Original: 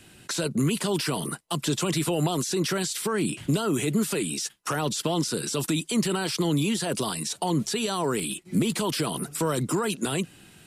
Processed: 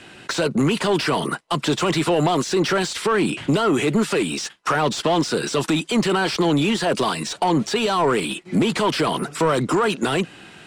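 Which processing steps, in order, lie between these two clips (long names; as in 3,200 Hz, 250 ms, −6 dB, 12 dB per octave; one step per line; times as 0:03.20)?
low-pass filter 8,700 Hz 12 dB per octave
mid-hump overdrive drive 17 dB, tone 1,600 Hz, clips at −13 dBFS
level +4.5 dB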